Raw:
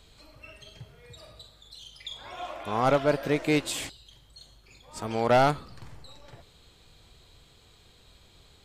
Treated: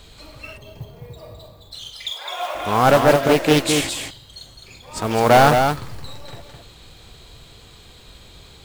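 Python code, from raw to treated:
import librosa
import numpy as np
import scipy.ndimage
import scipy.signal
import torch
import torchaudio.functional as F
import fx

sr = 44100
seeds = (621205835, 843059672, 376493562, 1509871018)

p1 = fx.highpass(x, sr, hz=470.0, slope=24, at=(1.89, 2.55))
p2 = fx.mod_noise(p1, sr, seeds[0], snr_db=20)
p3 = np.clip(10.0 ** (25.5 / 20.0) * p2, -1.0, 1.0) / 10.0 ** (25.5 / 20.0)
p4 = p2 + (p3 * librosa.db_to_amplitude(-5.0))
p5 = p4 + 10.0 ** (-5.5 / 20.0) * np.pad(p4, (int(211 * sr / 1000.0), 0))[:len(p4)]
p6 = fx.spec_box(p5, sr, start_s=0.57, length_s=1.15, low_hz=1200.0, high_hz=12000.0, gain_db=-11)
p7 = fx.doppler_dist(p6, sr, depth_ms=0.37)
y = p7 * librosa.db_to_amplitude(7.0)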